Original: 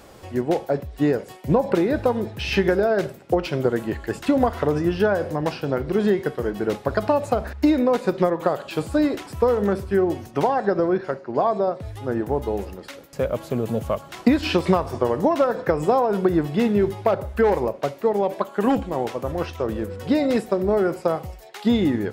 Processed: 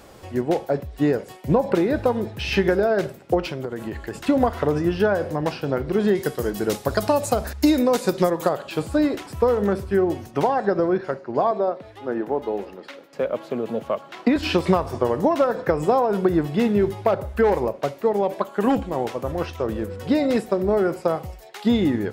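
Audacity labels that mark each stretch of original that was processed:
3.490000	4.160000	compression 10:1, threshold -24 dBFS
6.150000	8.490000	tone controls bass +1 dB, treble +14 dB
11.510000	14.360000	three-band isolator lows -21 dB, under 190 Hz, highs -13 dB, over 4.6 kHz

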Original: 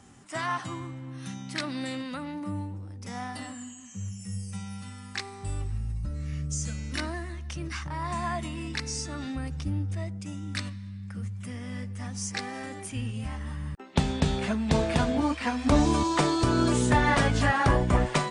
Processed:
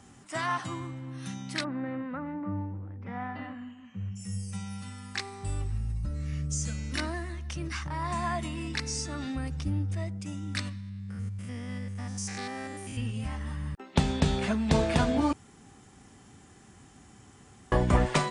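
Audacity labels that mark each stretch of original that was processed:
1.630000	4.150000	low-pass 1.6 kHz -> 3 kHz 24 dB/octave
10.800000	12.980000	spectrogram pixelated in time every 100 ms
15.330000	17.720000	room tone

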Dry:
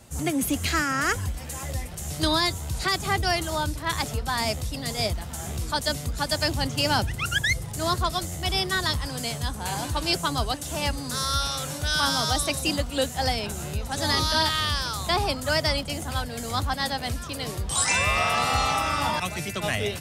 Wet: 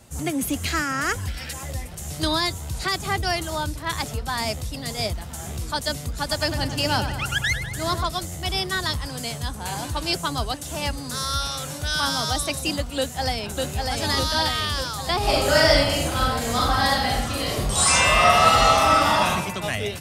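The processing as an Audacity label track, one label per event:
1.270000	1.530000	time-frequency box 1.3–5.8 kHz +10 dB
6.110000	8.050000	feedback echo behind a low-pass 101 ms, feedback 60%, low-pass 3.8 kHz, level -9 dB
12.970000	13.630000	echo throw 600 ms, feedback 65%, level -2.5 dB
15.180000	19.290000	reverb throw, RT60 0.95 s, DRR -6.5 dB

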